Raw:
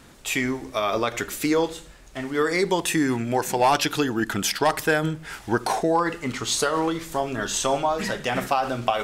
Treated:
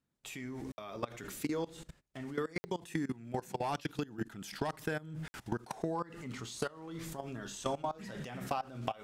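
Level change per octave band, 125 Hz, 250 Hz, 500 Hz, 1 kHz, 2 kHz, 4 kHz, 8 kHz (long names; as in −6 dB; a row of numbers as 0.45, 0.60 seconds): −10.0, −13.5, −15.5, −16.0, −18.0, −19.0, −19.5 decibels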